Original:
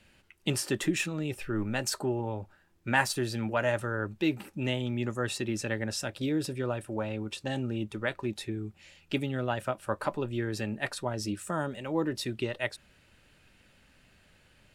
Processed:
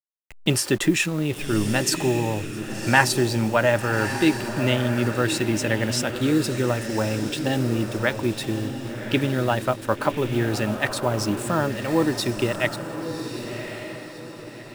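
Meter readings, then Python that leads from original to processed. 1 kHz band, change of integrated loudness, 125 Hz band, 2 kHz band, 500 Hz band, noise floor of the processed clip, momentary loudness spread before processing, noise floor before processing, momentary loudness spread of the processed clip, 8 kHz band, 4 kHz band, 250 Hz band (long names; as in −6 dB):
+9.0 dB, +8.5 dB, +9.5 dB, +9.0 dB, +9.0 dB, −39 dBFS, 6 LU, −63 dBFS, 11 LU, +9.5 dB, +9.0 dB, +9.0 dB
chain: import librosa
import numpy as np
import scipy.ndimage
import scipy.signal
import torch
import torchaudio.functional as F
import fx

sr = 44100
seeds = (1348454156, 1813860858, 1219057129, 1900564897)

y = fx.delta_hold(x, sr, step_db=-44.5)
y = fx.echo_diffused(y, sr, ms=1128, feedback_pct=41, wet_db=-8)
y = y * 10.0 ** (8.5 / 20.0)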